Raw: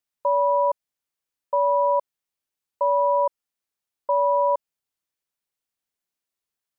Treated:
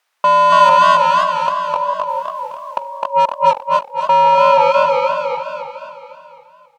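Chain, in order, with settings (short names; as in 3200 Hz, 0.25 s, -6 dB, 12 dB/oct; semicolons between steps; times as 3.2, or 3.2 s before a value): Doppler pass-by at 1.94, 11 m/s, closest 1.7 m; HPF 700 Hz 12 dB/oct; in parallel at 0 dB: compressor 12:1, threshold -34 dBFS, peak gain reduction 14 dB; on the sum: flipped gate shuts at -28 dBFS, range -40 dB; overdrive pedal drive 24 dB, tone 1000 Hz, clips at -26 dBFS; feedback echo 0.258 s, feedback 54%, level -6 dB; maximiser +34.5 dB; warbling echo 0.281 s, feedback 36%, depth 144 cents, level -3.5 dB; gain -5 dB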